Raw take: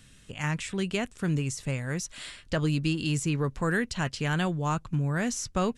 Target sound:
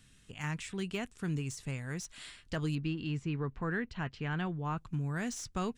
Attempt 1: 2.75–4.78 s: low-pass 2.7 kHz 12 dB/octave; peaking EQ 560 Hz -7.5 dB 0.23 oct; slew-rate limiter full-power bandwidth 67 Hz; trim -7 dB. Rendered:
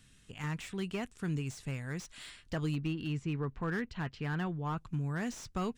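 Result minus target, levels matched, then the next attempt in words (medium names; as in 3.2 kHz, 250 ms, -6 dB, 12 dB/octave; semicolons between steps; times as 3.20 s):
slew-rate limiter: distortion +12 dB
2.75–4.78 s: low-pass 2.7 kHz 12 dB/octave; peaking EQ 560 Hz -7.5 dB 0.23 oct; slew-rate limiter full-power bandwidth 171 Hz; trim -7 dB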